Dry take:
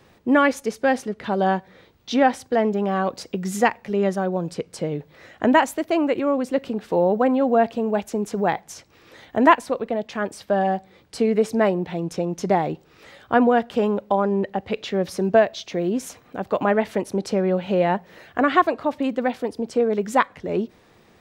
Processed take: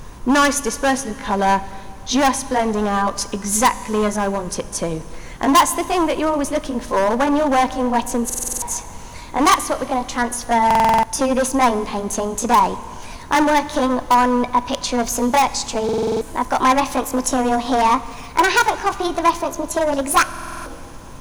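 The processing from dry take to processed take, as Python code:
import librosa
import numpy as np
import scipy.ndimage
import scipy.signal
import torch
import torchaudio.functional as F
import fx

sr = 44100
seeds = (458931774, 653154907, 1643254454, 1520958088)

p1 = fx.pitch_glide(x, sr, semitones=5.5, runs='starting unshifted')
p2 = np.clip(10.0 ** (17.5 / 20.0) * p1, -1.0, 1.0) / 10.0 ** (17.5 / 20.0)
p3 = fx.high_shelf(p2, sr, hz=2200.0, db=7.0)
p4 = fx.rev_schroeder(p3, sr, rt60_s=2.3, comb_ms=26, drr_db=15.0)
p5 = fx.dmg_noise_colour(p4, sr, seeds[0], colour='brown', level_db=-37.0)
p6 = fx.graphic_eq_31(p5, sr, hz=(250, 1000, 1600, 6300, 10000), db=(4, 12, 3, 9, 11))
p7 = (np.mod(10.0 ** (7.5 / 20.0) * p6 + 1.0, 2.0) - 1.0) / 10.0 ** (7.5 / 20.0)
p8 = p6 + F.gain(torch.from_numpy(p7), -11.0).numpy()
y = fx.buffer_glitch(p8, sr, at_s=(8.25, 10.66, 15.84, 20.29), block=2048, repeats=7)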